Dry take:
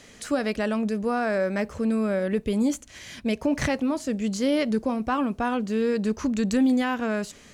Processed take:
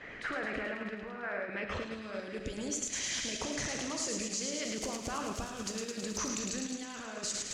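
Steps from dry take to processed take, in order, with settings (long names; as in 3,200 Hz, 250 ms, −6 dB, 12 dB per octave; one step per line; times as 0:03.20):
0:04.57–0:06.18: spike at every zero crossing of −31.5 dBFS
low-pass filter sweep 1,900 Hz → 6,700 Hz, 0:01.25–0:02.38
brickwall limiter −28.5 dBFS, peak gain reduction 17 dB
on a send at −2.5 dB: convolution reverb RT60 0.90 s, pre-delay 5 ms
on the sum: harmonic and percussive parts rebalanced harmonic −11 dB
bass and treble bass −4 dB, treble +1 dB
delay with a high-pass on its return 107 ms, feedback 74%, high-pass 1,900 Hz, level −3.5 dB
in parallel at +0.5 dB: output level in coarse steps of 11 dB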